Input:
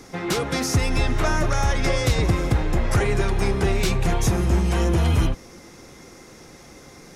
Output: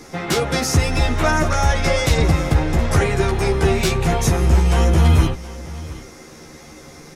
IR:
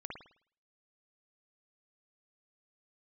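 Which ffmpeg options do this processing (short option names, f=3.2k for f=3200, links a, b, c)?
-filter_complex "[0:a]asplit=2[a][b];[b]adelay=13,volume=-3dB[c];[a][c]amix=inputs=2:normalize=0,asplit=2[d][e];[e]aecho=0:1:719:0.126[f];[d][f]amix=inputs=2:normalize=0,volume=2.5dB"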